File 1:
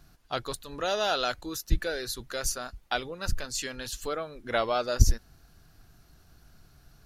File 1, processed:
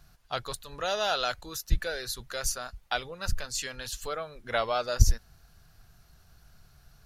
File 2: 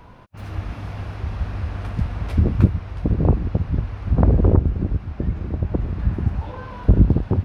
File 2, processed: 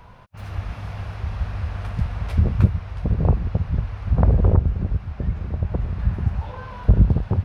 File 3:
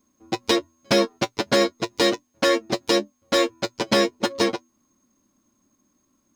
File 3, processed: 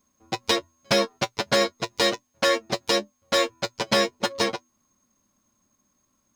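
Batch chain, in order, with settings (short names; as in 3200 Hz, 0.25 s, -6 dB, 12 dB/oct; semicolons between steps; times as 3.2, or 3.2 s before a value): bell 300 Hz -10 dB 0.82 oct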